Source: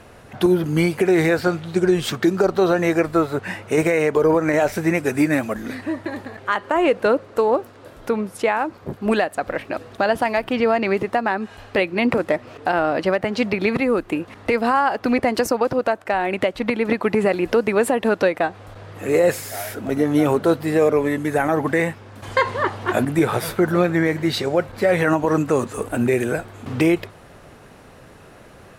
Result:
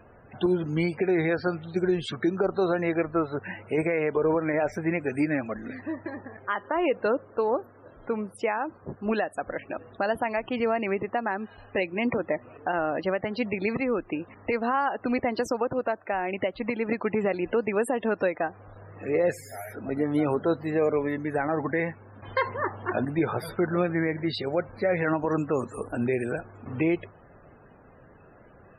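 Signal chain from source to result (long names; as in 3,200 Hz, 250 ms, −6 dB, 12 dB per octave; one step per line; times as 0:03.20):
spectral peaks only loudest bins 64
level −7.5 dB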